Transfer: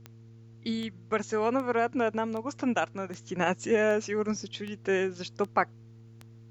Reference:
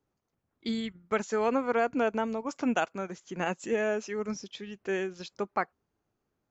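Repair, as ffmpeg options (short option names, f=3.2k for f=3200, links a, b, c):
-af "adeclick=t=4,bandreject=f=113.4:t=h:w=4,bandreject=f=226.8:t=h:w=4,bandreject=f=340.2:t=h:w=4,bandreject=f=453.6:t=h:w=4,agate=range=-21dB:threshold=-43dB,asetnsamples=n=441:p=0,asendcmd='3.14 volume volume -4dB',volume=0dB"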